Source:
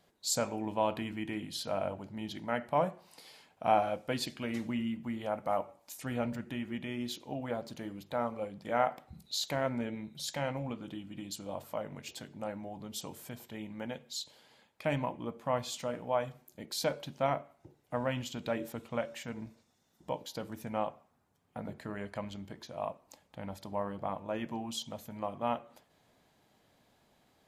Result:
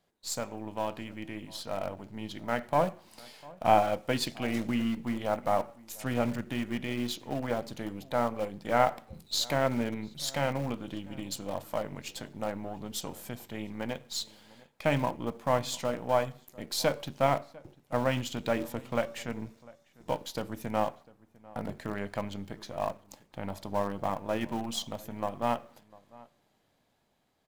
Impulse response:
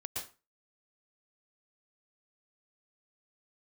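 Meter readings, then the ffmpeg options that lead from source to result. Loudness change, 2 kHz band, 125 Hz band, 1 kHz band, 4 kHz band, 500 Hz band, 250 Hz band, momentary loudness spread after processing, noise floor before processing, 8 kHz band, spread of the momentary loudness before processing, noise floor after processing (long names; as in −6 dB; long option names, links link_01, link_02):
+4.0 dB, +5.0 dB, +5.0 dB, +4.0 dB, +3.5 dB, +4.0 dB, +4.0 dB, 13 LU, −71 dBFS, +2.0 dB, 12 LU, −71 dBFS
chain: -filter_complex "[0:a]aeval=exprs='if(lt(val(0),0),0.708*val(0),val(0))':channel_layout=same,dynaudnorm=framelen=660:gausssize=7:maxgain=8dB,asplit=2[link_01][link_02];[link_02]acrusher=bits=6:dc=4:mix=0:aa=0.000001,volume=-8dB[link_03];[link_01][link_03]amix=inputs=2:normalize=0,asplit=2[link_04][link_05];[link_05]adelay=699.7,volume=-22dB,highshelf=frequency=4000:gain=-15.7[link_06];[link_04][link_06]amix=inputs=2:normalize=0,volume=-5dB"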